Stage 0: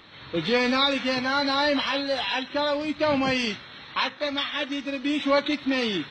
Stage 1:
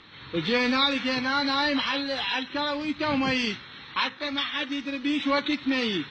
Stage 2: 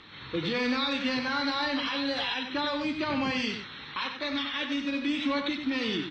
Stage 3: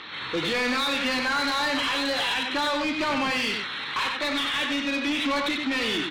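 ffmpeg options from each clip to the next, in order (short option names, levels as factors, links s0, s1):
-af "lowpass=6500,equalizer=f=630:w=2.7:g=-8.5"
-filter_complex "[0:a]alimiter=limit=0.0841:level=0:latency=1:release=150,asplit=2[s0][s1];[s1]adelay=32,volume=0.211[s2];[s0][s2]amix=inputs=2:normalize=0,asplit=2[s3][s4];[s4]adelay=93.29,volume=0.447,highshelf=f=4000:g=-2.1[s5];[s3][s5]amix=inputs=2:normalize=0"
-filter_complex "[0:a]asplit=2[s0][s1];[s1]highpass=f=720:p=1,volume=8.91,asoftclip=type=tanh:threshold=0.126[s2];[s0][s2]amix=inputs=2:normalize=0,lowpass=f=3900:p=1,volume=0.501"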